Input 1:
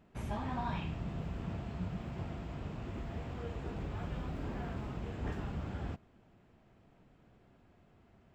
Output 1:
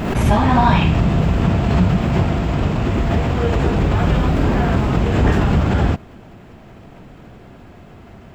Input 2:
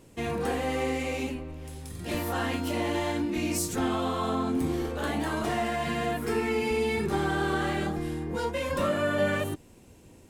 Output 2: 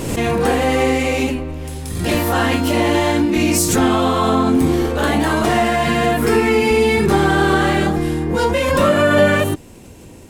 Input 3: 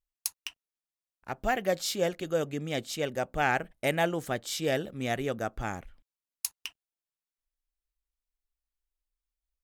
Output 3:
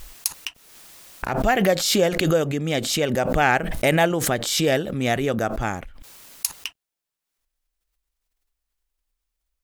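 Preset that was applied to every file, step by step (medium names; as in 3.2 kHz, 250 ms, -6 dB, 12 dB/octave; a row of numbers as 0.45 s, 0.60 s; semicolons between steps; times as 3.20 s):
swell ahead of each attack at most 42 dB/s; peak normalisation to -2 dBFS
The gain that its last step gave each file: +23.0 dB, +13.0 dB, +8.0 dB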